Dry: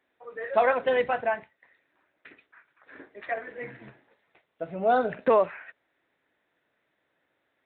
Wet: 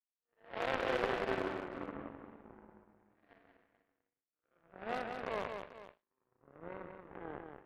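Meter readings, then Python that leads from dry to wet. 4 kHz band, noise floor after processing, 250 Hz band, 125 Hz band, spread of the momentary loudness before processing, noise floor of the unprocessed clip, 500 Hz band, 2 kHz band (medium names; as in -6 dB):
no reading, under -85 dBFS, -6.5 dB, -4.5 dB, 18 LU, -76 dBFS, -13.5 dB, -9.5 dB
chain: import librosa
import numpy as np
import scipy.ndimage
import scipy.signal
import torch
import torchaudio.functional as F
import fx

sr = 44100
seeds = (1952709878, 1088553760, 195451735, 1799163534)

y = fx.spec_blur(x, sr, span_ms=224.0)
y = fx.env_lowpass_down(y, sr, base_hz=2400.0, full_db=-27.0)
y = fx.echo_pitch(y, sr, ms=125, semitones=-5, count=3, db_per_echo=-3.0)
y = scipy.signal.sosfilt(scipy.signal.butter(4, 79.0, 'highpass', fs=sr, output='sos'), y)
y = fx.high_shelf(y, sr, hz=3200.0, db=8.5)
y = fx.power_curve(y, sr, exponent=3.0)
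y = fx.clip_asym(y, sr, top_db=-30.5, bottom_db=-20.0)
y = fx.env_lowpass(y, sr, base_hz=1800.0, full_db=-39.0)
y = fx.echo_multitap(y, sr, ms=(182, 439), db=(-5.5, -14.5))
y = y * 10.0 ** (3.0 / 20.0)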